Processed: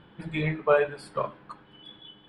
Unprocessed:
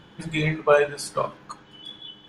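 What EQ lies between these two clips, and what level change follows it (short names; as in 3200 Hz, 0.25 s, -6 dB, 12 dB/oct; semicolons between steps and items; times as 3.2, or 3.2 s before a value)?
running mean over 7 samples; -3.5 dB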